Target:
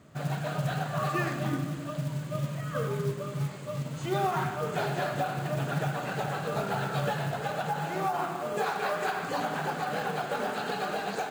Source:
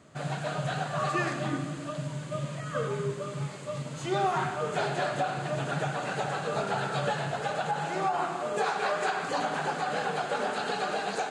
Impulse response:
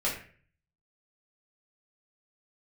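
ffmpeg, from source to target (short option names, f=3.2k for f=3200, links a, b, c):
-af "bass=f=250:g=5,treble=f=4k:g=-3,acrusher=bits=5:mode=log:mix=0:aa=0.000001,volume=-1.5dB"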